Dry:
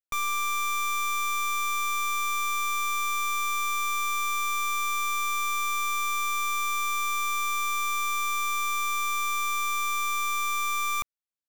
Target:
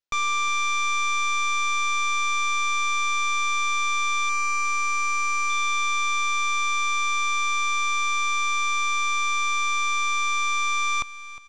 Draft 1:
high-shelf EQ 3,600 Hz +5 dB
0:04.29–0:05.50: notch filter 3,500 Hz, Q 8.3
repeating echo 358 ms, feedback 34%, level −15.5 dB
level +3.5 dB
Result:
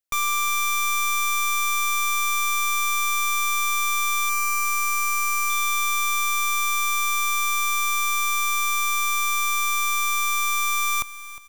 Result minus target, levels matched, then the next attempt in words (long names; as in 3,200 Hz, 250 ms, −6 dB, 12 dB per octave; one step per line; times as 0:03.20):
8,000 Hz band +4.0 dB
low-pass filter 6,000 Hz 24 dB per octave
high-shelf EQ 3,600 Hz +5 dB
0:04.29–0:05.50: notch filter 3,500 Hz, Q 8.3
repeating echo 358 ms, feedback 34%, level −15.5 dB
level +3.5 dB